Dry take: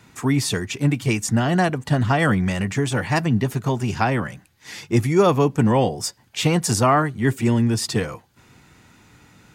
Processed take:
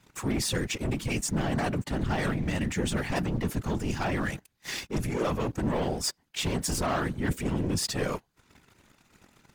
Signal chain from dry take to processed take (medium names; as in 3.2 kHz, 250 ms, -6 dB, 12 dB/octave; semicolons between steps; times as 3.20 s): dynamic bell 1 kHz, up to -3 dB, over -33 dBFS, Q 1.6; waveshaping leveller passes 3; reverse; compression 6:1, threshold -20 dBFS, peak gain reduction 10.5 dB; reverse; whisper effect; trim -7.5 dB